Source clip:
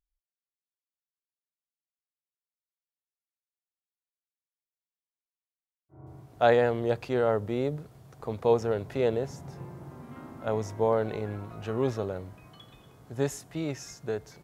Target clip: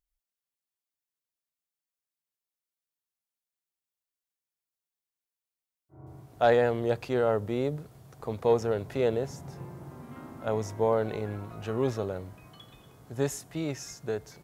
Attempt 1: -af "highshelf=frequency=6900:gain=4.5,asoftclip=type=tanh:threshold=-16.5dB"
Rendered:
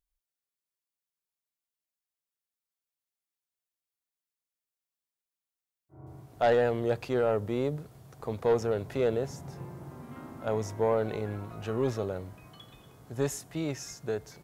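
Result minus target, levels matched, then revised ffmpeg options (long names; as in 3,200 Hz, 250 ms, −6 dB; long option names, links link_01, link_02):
soft clipping: distortion +11 dB
-af "highshelf=frequency=6900:gain=4.5,asoftclip=type=tanh:threshold=-9dB"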